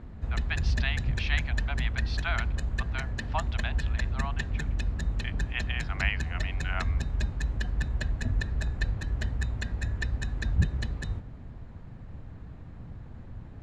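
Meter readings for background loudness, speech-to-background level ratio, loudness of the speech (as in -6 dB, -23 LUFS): -32.0 LUFS, -4.5 dB, -36.5 LUFS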